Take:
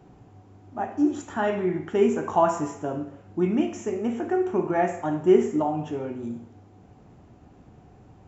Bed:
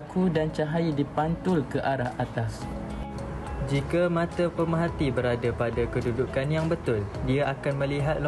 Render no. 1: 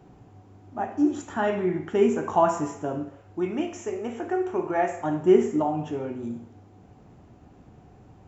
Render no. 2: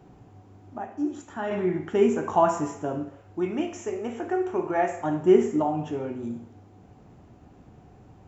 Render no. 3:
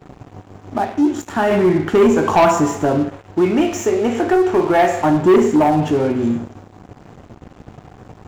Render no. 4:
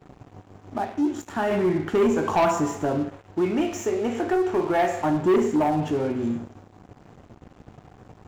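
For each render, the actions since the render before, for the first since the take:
0:03.09–0:05.01: parametric band 200 Hz −10 dB 1 octave
0:00.78–0:01.51: clip gain −6 dB
in parallel at −1 dB: downward compressor, threshold −33 dBFS, peak gain reduction 19.5 dB; on the sum: leveller curve on the samples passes 3
level −8 dB

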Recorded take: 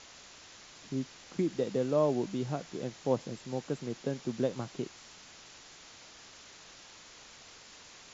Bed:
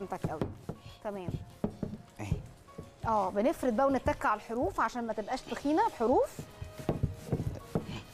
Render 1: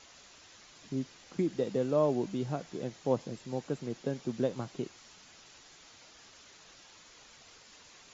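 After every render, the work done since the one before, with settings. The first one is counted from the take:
broadband denoise 6 dB, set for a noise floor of −54 dBFS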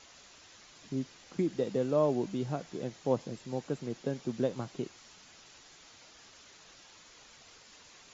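no processing that can be heard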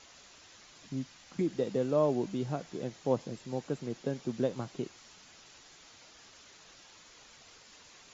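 0:00.86–0:01.41: parametric band 410 Hz −9.5 dB 0.66 octaves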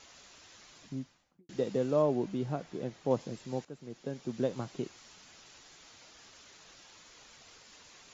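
0:00.72–0:01.49: fade out and dull
0:02.02–0:03.11: high-shelf EQ 4,700 Hz −9 dB
0:03.65–0:04.53: fade in, from −14 dB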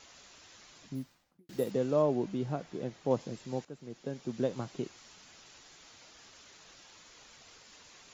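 0:00.95–0:01.71: bad sample-rate conversion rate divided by 4×, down none, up hold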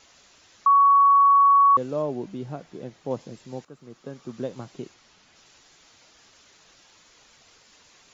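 0:00.66–0:01.77: beep over 1,120 Hz −12.5 dBFS
0:03.64–0:04.42: parametric band 1,200 Hz +9.5 dB 0.41 octaves
0:04.94–0:05.36: high-frequency loss of the air 68 metres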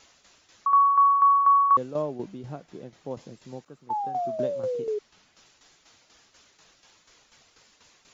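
0:03.89–0:04.99: sound drawn into the spectrogram fall 410–890 Hz −26 dBFS
shaped tremolo saw down 4.1 Hz, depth 65%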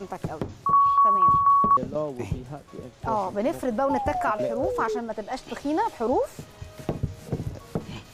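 mix in bed +3 dB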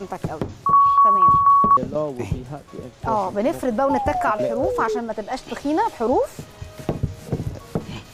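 level +4.5 dB

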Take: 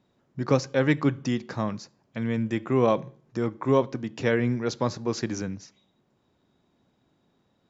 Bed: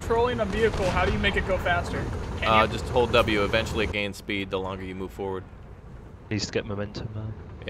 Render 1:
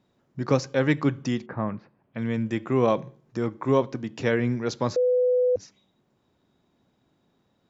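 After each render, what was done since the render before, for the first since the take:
0:01.45–0:02.17: low-pass filter 1,800 Hz → 3,200 Hz 24 dB per octave
0:04.96–0:05.56: beep over 499 Hz −18 dBFS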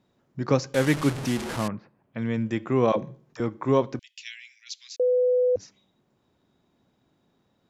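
0:00.74–0:01.68: linear delta modulator 64 kbit/s, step −26.5 dBFS
0:02.92–0:03.40: all-pass dispersion lows, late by 47 ms, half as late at 410 Hz
0:03.99–0:05.00: Butterworth high-pass 2,400 Hz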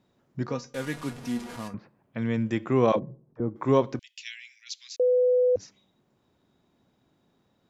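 0:00.48–0:01.74: tuned comb filter 240 Hz, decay 0.18 s, mix 80%
0:02.99–0:03.56: Bessel low-pass filter 510 Hz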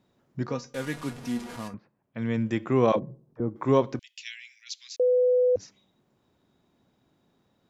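0:01.74–0:02.35: expander for the loud parts, over −42 dBFS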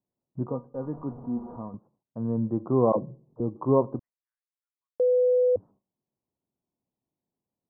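Butterworth low-pass 1,100 Hz 48 dB per octave
noise gate with hold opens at −56 dBFS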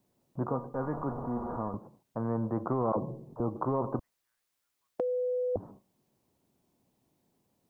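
brickwall limiter −17.5 dBFS, peak gain reduction 7.5 dB
every bin compressed towards the loudest bin 2 to 1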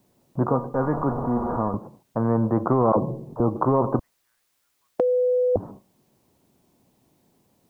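level +10 dB

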